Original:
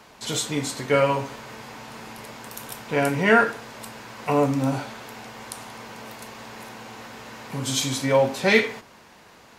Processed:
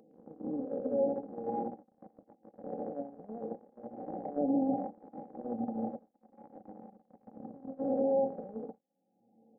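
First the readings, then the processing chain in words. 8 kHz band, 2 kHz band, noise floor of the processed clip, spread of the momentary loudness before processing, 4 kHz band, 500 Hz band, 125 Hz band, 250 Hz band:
below −40 dB, below −40 dB, −76 dBFS, 20 LU, below −40 dB, −10.0 dB, −21.5 dB, −7.5 dB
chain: peak hold with a rise ahead of every peak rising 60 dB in 1.38 s
reversed playback
downward compressor 5 to 1, threshold −27 dBFS, peak gain reduction 15.5 dB
reversed playback
delay with pitch and tempo change per echo 243 ms, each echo −3 semitones, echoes 3, each echo −6 dB
brick-wall band-pass 110–840 Hz
brickwall limiter −25.5 dBFS, peak gain reduction 6.5 dB
comb filter 3.8 ms, depth 90%
feedback delay with all-pass diffusion 1,006 ms, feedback 44%, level −16 dB
noise gate −29 dBFS, range −53 dB
upward compression, threshold −41 dBFS

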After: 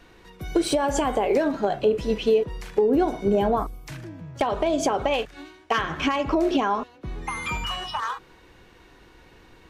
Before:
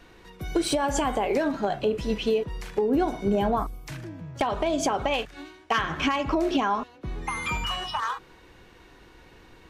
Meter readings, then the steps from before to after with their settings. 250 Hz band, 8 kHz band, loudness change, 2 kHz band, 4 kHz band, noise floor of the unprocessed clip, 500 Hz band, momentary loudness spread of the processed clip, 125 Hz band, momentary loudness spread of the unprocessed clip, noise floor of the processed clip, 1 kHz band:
+2.0 dB, 0.0 dB, +2.5 dB, 0.0 dB, 0.0 dB, −53 dBFS, +4.0 dB, 14 LU, 0.0 dB, 13 LU, −53 dBFS, +1.0 dB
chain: dynamic equaliser 460 Hz, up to +5 dB, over −35 dBFS, Q 1.3

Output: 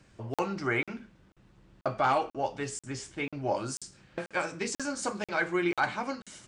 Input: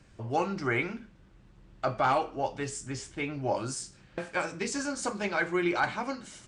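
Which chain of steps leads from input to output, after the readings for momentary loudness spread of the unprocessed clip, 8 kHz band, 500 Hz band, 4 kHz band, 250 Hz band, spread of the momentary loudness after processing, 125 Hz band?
10 LU, −0.5 dB, −0.5 dB, −0.5 dB, −1.0 dB, 11 LU, −2.0 dB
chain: low-shelf EQ 71 Hz −8 dB
regular buffer underruns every 0.49 s, samples 2,048, zero, from 0:00.34

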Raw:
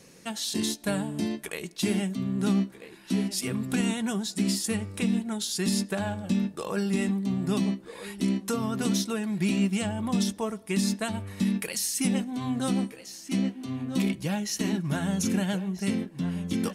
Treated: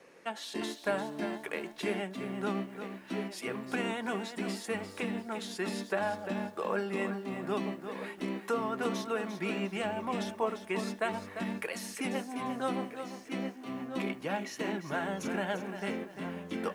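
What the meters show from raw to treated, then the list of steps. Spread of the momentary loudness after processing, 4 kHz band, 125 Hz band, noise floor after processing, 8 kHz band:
5 LU, −9.0 dB, −13.0 dB, −50 dBFS, −15.0 dB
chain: three-way crossover with the lows and the highs turned down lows −20 dB, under 350 Hz, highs −18 dB, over 2,500 Hz
feedback echo at a low word length 347 ms, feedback 35%, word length 10 bits, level −9 dB
level +2 dB

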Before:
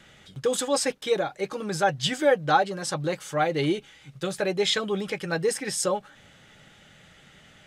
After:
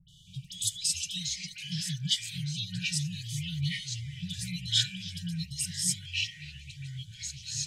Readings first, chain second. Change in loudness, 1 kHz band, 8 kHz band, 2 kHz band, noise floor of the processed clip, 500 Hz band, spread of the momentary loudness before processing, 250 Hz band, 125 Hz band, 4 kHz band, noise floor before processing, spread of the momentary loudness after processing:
−6.0 dB, below −40 dB, +1.0 dB, −9.0 dB, −52 dBFS, below −40 dB, 8 LU, −8.5 dB, +1.5 dB, +1.0 dB, −54 dBFS, 14 LU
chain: brick-wall band-stop 190–2,900 Hz
all-pass dispersion highs, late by 89 ms, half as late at 1,800 Hz
delay with pitch and tempo change per echo 184 ms, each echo −4 semitones, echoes 3, each echo −6 dB

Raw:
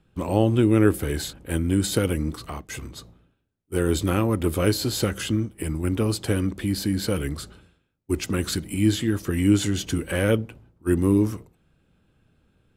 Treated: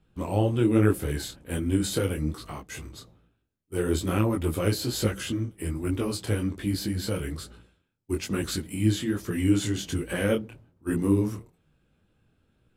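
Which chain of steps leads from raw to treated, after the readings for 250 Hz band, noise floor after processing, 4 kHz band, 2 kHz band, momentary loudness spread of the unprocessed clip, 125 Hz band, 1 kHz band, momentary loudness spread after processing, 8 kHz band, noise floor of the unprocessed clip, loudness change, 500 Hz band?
−4.0 dB, −71 dBFS, −4.0 dB, −3.5 dB, 13 LU, −3.0 dB, −3.5 dB, 13 LU, −4.0 dB, −68 dBFS, −3.5 dB, −3.5 dB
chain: micro pitch shift up and down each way 41 cents

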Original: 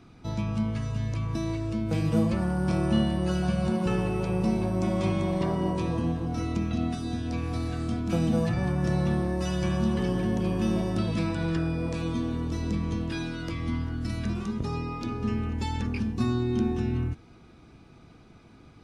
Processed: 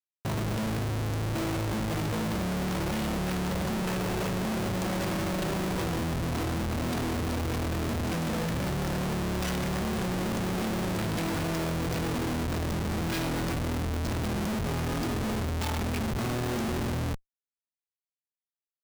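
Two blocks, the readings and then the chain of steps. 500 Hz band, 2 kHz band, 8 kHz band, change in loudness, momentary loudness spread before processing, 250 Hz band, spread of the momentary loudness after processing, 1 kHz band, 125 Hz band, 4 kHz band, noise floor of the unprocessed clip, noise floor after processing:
−1.0 dB, +4.0 dB, +8.0 dB, −2.0 dB, 6 LU, −3.5 dB, 1 LU, +2.0 dB, −3.0 dB, +4.0 dB, −52 dBFS, below −85 dBFS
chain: high-shelf EQ 3,900 Hz +10.5 dB
mains-hum notches 50/100/150/200/250/300/350/400 Hz
comparator with hysteresis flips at −35.5 dBFS
level −1.5 dB

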